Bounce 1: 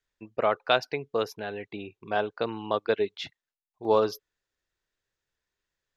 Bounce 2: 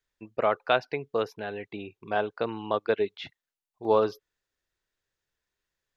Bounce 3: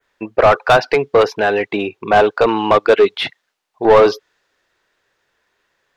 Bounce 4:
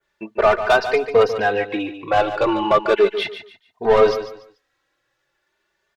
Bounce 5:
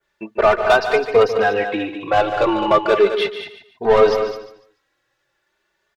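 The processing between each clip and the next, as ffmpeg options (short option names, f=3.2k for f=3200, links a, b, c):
-filter_complex "[0:a]acrossover=split=3600[a][b];[b]acompressor=threshold=-53dB:ratio=4:attack=1:release=60[c];[a][c]amix=inputs=2:normalize=0"
-filter_complex "[0:a]adynamicequalizer=threshold=0.00447:dfrequency=5000:dqfactor=0.81:tfrequency=5000:tqfactor=0.81:attack=5:release=100:ratio=0.375:range=3:mode=boostabove:tftype=bell,acontrast=35,asplit=2[a][b];[b]highpass=f=720:p=1,volume=23dB,asoftclip=type=tanh:threshold=-4dB[c];[a][c]amix=inputs=2:normalize=0,lowpass=f=1.2k:p=1,volume=-6dB,volume=4dB"
-filter_complex "[0:a]aphaser=in_gain=1:out_gain=1:delay=3.4:decay=0.22:speed=0.81:type=triangular,asplit=2[a][b];[b]aecho=0:1:145|290|435:0.282|0.0761|0.0205[c];[a][c]amix=inputs=2:normalize=0,asplit=2[d][e];[e]adelay=3,afreqshift=0.36[f];[d][f]amix=inputs=2:normalize=1,volume=-2dB"
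-af "aecho=1:1:208:0.335,volume=1dB"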